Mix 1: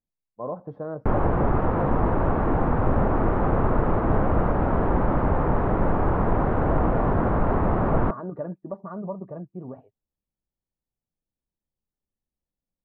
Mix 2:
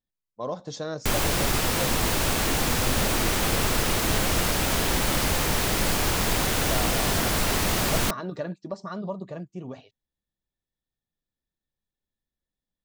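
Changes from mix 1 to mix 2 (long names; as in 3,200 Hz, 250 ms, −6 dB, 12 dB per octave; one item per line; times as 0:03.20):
background −5.0 dB
master: remove low-pass filter 1,200 Hz 24 dB per octave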